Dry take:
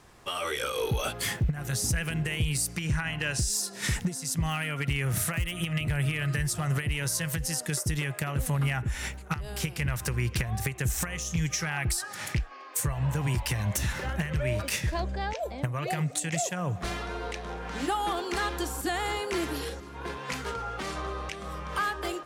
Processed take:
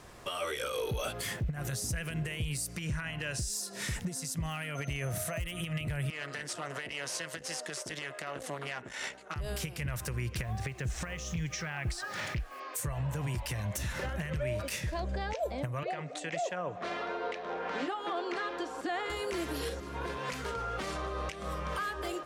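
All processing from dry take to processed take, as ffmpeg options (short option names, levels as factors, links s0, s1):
-filter_complex "[0:a]asettb=1/sr,asplit=3[s0][s1][s2];[s0]atrim=end=4.754[s3];[s1]atrim=start=4.75:end=5.4,asetpts=PTS-STARTPTS,afade=t=in:d=0.004:c=qsin,afade=t=out:st=0.646:d=0.004:c=qsin,equalizer=f=650:w=3.1:g=12,aeval=exprs='val(0)+0.00447*sin(2*PI*6200*n/s)':c=same[s4];[s2]atrim=start=5.396[s5];[s3][s4]acrossfade=d=0.004:c1=hsin:c2=qsin[s6];[s6][s5]acrossfade=d=0.004:c1=qsin:c2=hsin,asettb=1/sr,asplit=3[s7][s8][s9];[s7]atrim=end=6.104[s10];[s8]atrim=start=6.1:end=9.36,asetpts=PTS-STARTPTS,afade=t=in:d=0.004:c=qsin,afade=t=out:st=3.256:d=0.004:c=qsin,bandreject=f=2400:w=16,aeval=exprs='(tanh(22.4*val(0)+0.6)-tanh(0.6))/22.4':c=same,highpass=370,lowpass=6500[s11];[s9]atrim=start=9.356[s12];[s10][s11]acrossfade=d=0.004:c1=hsin:c2=qsin[s13];[s13][s12]acrossfade=d=0.004:c1=qsin:c2=hsin,asettb=1/sr,asplit=3[s14][s15][s16];[s14]atrim=end=10.434[s17];[s15]atrim=start=10.43:end=12.6,asetpts=PTS-STARTPTS,afade=t=in:d=0.004:c=qsin,afade=t=out:st=2.166:d=0.004:c=qsin,lowpass=4700,acrusher=bits=8:mix=0:aa=0.5[s18];[s16]atrim=start=12.596[s19];[s17][s18]acrossfade=d=0.004:c1=hsin:c2=qsin[s20];[s20][s19]acrossfade=d=0.004:c1=qsin:c2=hsin,asettb=1/sr,asplit=3[s21][s22][s23];[s21]atrim=end=15.834[s24];[s22]atrim=start=15.83:end=19.1,asetpts=PTS-STARTPTS,afade=t=in:d=0.004:c=qsin,afade=t=out:st=3.266:d=0.004:c=qsin,highpass=320,lowpass=5400,highshelf=f=3900:g=-9.5[s25];[s23]atrim=start=19.096[s26];[s24][s25]acrossfade=d=0.004:c1=hsin:c2=qsin[s27];[s27][s26]acrossfade=d=0.004:c1=qsin:c2=hsin,bandreject=f=820:w=18,alimiter=level_in=2:limit=0.0631:level=0:latency=1:release=265,volume=0.501,equalizer=f=580:w=2.6:g=4,volume=1.41"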